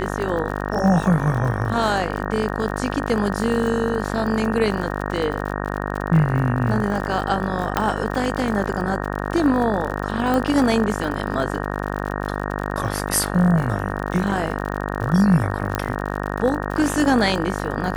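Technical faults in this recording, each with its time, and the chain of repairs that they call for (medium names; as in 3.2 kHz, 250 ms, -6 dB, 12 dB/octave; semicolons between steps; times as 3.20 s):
buzz 50 Hz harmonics 37 -26 dBFS
crackle 58 per s -27 dBFS
7.77 s: pop -5 dBFS
10.34 s: pop -10 dBFS
15.75 s: pop -8 dBFS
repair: de-click; de-hum 50 Hz, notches 37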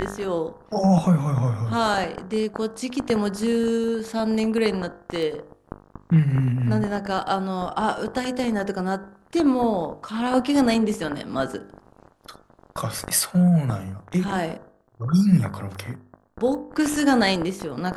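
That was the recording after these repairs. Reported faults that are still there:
15.75 s: pop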